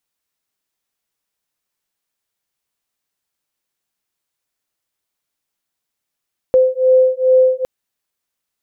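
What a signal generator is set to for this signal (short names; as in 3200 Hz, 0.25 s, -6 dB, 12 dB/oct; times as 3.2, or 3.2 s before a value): beating tones 514 Hz, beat 2.4 Hz, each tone -12.5 dBFS 1.11 s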